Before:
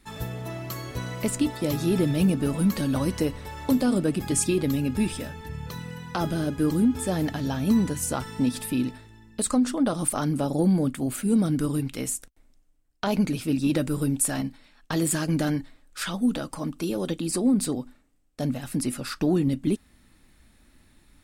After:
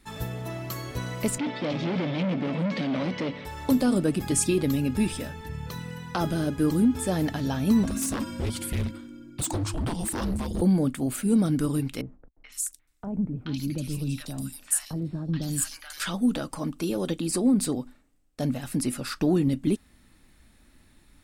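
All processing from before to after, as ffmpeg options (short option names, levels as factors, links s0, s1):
-filter_complex "[0:a]asettb=1/sr,asplit=3[s0][s1][s2];[s0]atrim=end=1.384[s3];[s1]atrim=start=1.38:end=3.45,asetpts=PTS-STARTPTS,afade=t=in:d=0.004:c=qsin,afade=t=out:st=2.066:d=0.004:c=qsin,asoftclip=type=hard:threshold=0.0376,highpass=f=130:w=0.5412,highpass=f=130:w=1.3066,equalizer=f=170:t=q:w=4:g=5,equalizer=f=250:t=q:w=4:g=5,equalizer=f=560:t=q:w=4:g=7,equalizer=f=2200:t=q:w=4:g=9,equalizer=f=3200:t=q:w=4:g=6,lowpass=f=5000:w=0.5412,lowpass=f=5000:w=1.3066[s4];[s2]atrim=start=3.446[s5];[s3][s4]acrossfade=d=0.004:c1=hsin:c2=qsin[s6];[s6][s5]acrossfade=d=0.004:c1=qsin:c2=hsin,asettb=1/sr,asplit=3[s7][s8][s9];[s7]atrim=end=7.834[s10];[s8]atrim=start=7.83:end=10.62,asetpts=PTS-STARTPTS,afade=t=in:d=0.004:c=qsin,afade=t=out:st=2.786:d=0.004:c=qsin,lowshelf=f=130:t=q:w=1.5:g=7,afreqshift=-350,aeval=exprs='0.0794*(abs(mod(val(0)/0.0794+3,4)-2)-1)':c=same[s11];[s9]atrim=start=10.616[s12];[s10][s11]acrossfade=d=0.004:c1=hsin:c2=qsin[s13];[s13][s12]acrossfade=d=0.004:c1=qsin:c2=hsin,asettb=1/sr,asplit=3[s14][s15][s16];[s14]atrim=end=12.014[s17];[s15]atrim=start=12.01:end=16,asetpts=PTS-STARTPTS,afade=t=in:d=0.004:c=qsin,afade=t=out:st=3.986:d=0.004:c=qsin,acrossover=split=1100|3400[s18][s19][s20];[s19]adelay=430[s21];[s20]adelay=510[s22];[s18][s21][s22]amix=inputs=3:normalize=0,atrim=end_sample=175959,acrossover=split=210|3000[s23][s24][s25];[s24]acompressor=threshold=0.00398:ratio=2:attack=3.2:release=140:knee=2.83:detection=peak[s26];[s23][s26][s25]amix=inputs=3:normalize=0[s27];[s16]atrim=start=15.996[s28];[s17][s27]acrossfade=d=0.004:c1=hsin:c2=qsin[s29];[s29][s28]acrossfade=d=0.004:c1=qsin:c2=hsin"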